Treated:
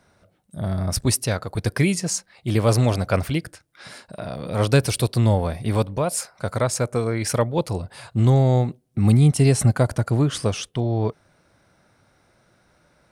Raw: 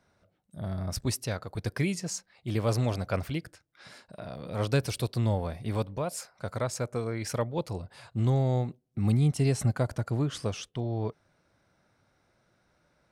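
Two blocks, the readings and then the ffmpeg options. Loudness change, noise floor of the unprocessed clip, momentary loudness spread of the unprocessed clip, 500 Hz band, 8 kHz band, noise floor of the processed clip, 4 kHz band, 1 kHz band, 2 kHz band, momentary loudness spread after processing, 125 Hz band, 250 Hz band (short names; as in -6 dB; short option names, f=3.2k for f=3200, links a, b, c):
+9.0 dB, -71 dBFS, 11 LU, +9.0 dB, +11.5 dB, -62 dBFS, +9.0 dB, +9.0 dB, +9.0 dB, 11 LU, +9.0 dB, +9.0 dB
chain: -af "equalizer=f=9.5k:t=o:w=0.32:g=6.5,volume=9dB"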